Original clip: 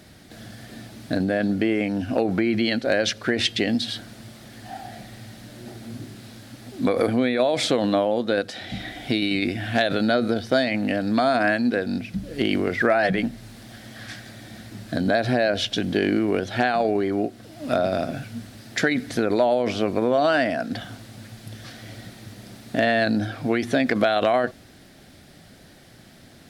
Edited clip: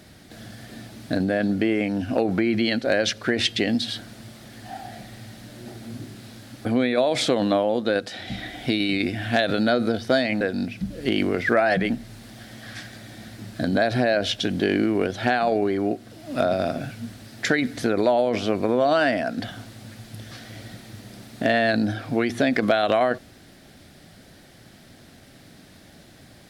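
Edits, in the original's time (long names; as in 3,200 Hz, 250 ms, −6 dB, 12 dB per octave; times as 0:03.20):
0:06.65–0:07.07: remove
0:10.83–0:11.74: remove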